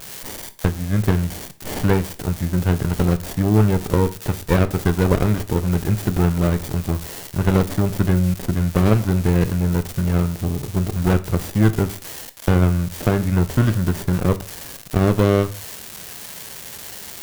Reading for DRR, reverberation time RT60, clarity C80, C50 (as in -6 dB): 11.5 dB, 0.40 s, 21.5 dB, 17.0 dB